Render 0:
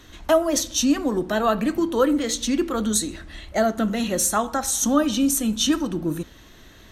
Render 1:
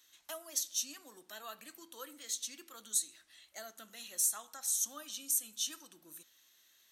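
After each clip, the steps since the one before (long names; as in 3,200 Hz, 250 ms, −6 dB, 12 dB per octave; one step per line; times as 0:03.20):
first difference
level −9 dB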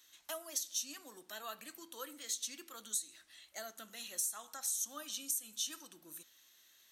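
downward compressor 6 to 1, threshold −35 dBFS, peak gain reduction 9 dB
level +1.5 dB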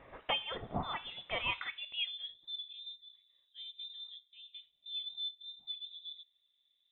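low-pass filter sweep 3,000 Hz → 280 Hz, 0:01.48–0:02.52
voice inversion scrambler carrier 3,800 Hz
level +8.5 dB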